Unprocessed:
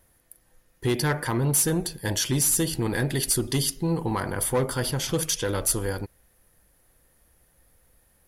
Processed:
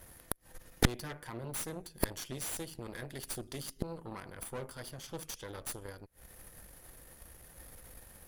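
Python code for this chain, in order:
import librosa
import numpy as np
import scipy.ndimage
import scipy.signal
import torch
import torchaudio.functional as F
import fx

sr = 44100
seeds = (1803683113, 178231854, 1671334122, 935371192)

y = fx.gate_flip(x, sr, shuts_db=-26.0, range_db=-27)
y = fx.cheby_harmonics(y, sr, harmonics=(6, 7), levels_db=(-8, -24), full_scale_db=-23.5)
y = y * librosa.db_to_amplitude(13.0)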